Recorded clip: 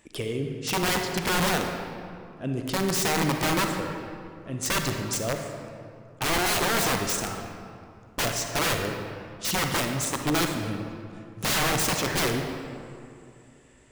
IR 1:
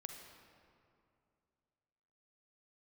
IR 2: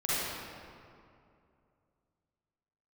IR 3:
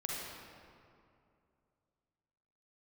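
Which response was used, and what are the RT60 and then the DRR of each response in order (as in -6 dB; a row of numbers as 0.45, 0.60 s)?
1; 2.5, 2.5, 2.5 s; 3.5, -11.0, -4.0 dB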